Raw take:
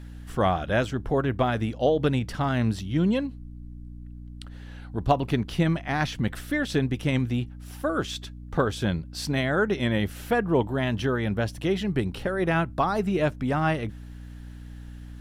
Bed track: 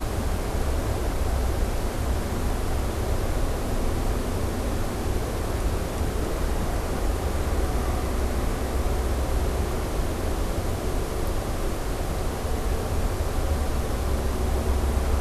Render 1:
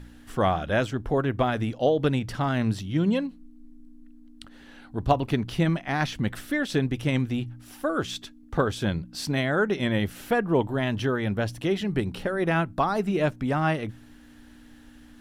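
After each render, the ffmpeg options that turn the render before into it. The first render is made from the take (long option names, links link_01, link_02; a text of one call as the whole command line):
ffmpeg -i in.wav -af "bandreject=frequency=60:width_type=h:width=4,bandreject=frequency=120:width_type=h:width=4,bandreject=frequency=180:width_type=h:width=4" out.wav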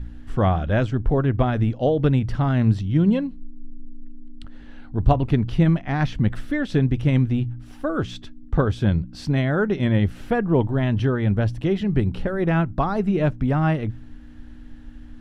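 ffmpeg -i in.wav -af "aemphasis=mode=reproduction:type=bsi" out.wav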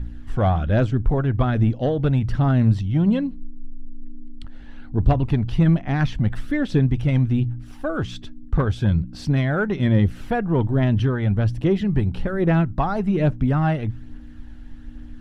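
ffmpeg -i in.wav -af "asoftclip=type=tanh:threshold=-9dB,aphaser=in_gain=1:out_gain=1:delay=1.5:decay=0.32:speed=1.2:type=triangular" out.wav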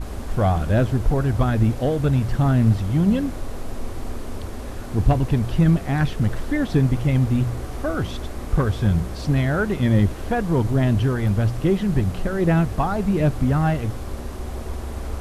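ffmpeg -i in.wav -i bed.wav -filter_complex "[1:a]volume=-6.5dB[link_01];[0:a][link_01]amix=inputs=2:normalize=0" out.wav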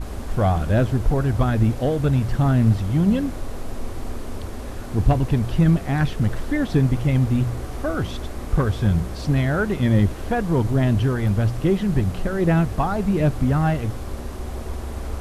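ffmpeg -i in.wav -af anull out.wav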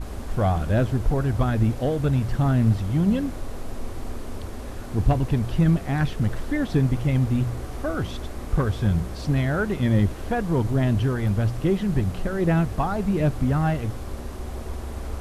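ffmpeg -i in.wav -af "volume=-2.5dB" out.wav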